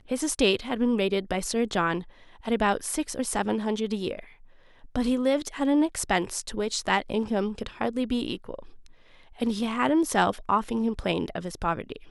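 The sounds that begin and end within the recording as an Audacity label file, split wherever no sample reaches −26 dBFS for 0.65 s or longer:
4.960000	8.540000	sound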